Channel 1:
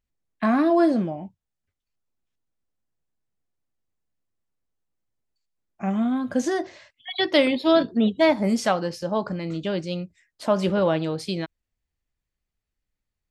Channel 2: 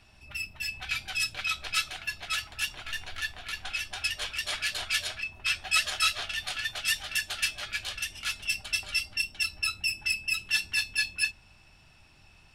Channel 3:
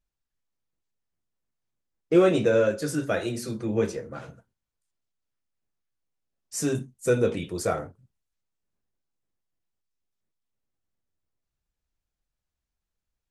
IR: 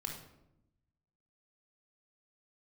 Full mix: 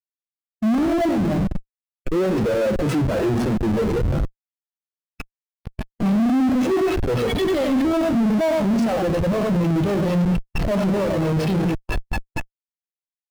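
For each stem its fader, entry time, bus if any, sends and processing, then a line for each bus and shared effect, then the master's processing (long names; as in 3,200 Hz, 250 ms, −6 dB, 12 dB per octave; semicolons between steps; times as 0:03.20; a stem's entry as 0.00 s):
−2.0 dB, 0.20 s, bus A, no send, echo send −6 dB, mains-hum notches 60/120/180/240 Hz; automatic gain control gain up to 12 dB
−3.0 dB, 1.15 s, no bus, no send, echo send −19 dB, no processing
−4.5 dB, 0.00 s, bus A, no send, echo send −14.5 dB, hold until the input has moved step −44 dBFS
bus A: 0.0 dB, automatic gain control gain up to 16.5 dB; brickwall limiter −11 dBFS, peak gain reduction 10.5 dB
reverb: not used
echo: repeating echo 95 ms, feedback 18%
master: comparator with hysteresis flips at −25 dBFS; every bin expanded away from the loudest bin 1.5 to 1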